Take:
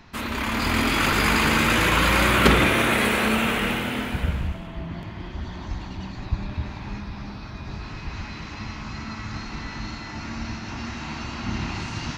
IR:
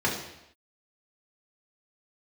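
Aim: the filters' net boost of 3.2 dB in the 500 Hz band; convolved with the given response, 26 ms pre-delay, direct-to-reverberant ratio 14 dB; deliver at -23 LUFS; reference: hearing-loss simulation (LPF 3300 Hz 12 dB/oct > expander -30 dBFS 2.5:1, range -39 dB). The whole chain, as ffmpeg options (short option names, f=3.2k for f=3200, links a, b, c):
-filter_complex "[0:a]equalizer=f=500:t=o:g=4,asplit=2[a][b];[1:a]atrim=start_sample=2205,adelay=26[c];[b][c]afir=irnorm=-1:irlink=0,volume=-26.5dB[d];[a][d]amix=inputs=2:normalize=0,lowpass=3.3k,agate=range=-39dB:threshold=-30dB:ratio=2.5"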